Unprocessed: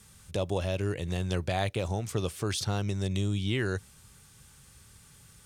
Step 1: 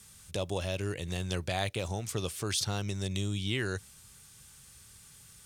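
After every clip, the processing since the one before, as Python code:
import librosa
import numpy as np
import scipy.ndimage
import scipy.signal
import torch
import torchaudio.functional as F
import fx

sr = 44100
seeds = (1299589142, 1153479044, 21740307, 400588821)

y = fx.high_shelf(x, sr, hz=2100.0, db=7.5)
y = y * 10.0 ** (-4.0 / 20.0)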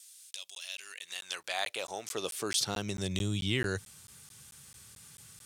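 y = fx.wow_flutter(x, sr, seeds[0], rate_hz=2.1, depth_cents=25.0)
y = fx.filter_sweep_highpass(y, sr, from_hz=3400.0, to_hz=92.0, start_s=0.54, end_s=3.26, q=0.77)
y = fx.buffer_crackle(y, sr, first_s=0.33, period_s=0.22, block=512, kind='zero')
y = y * 10.0 ** (1.5 / 20.0)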